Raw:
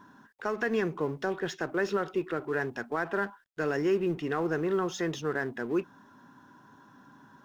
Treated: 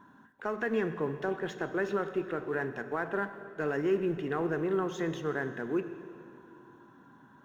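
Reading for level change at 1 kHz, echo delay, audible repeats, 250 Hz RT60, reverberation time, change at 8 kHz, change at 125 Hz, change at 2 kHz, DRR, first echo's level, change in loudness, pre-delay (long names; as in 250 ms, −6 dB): −2.0 dB, no echo audible, no echo audible, 3.2 s, 2.6 s, can't be measured, −1.0 dB, −2.5 dB, 10.0 dB, no echo audible, −2.0 dB, 10 ms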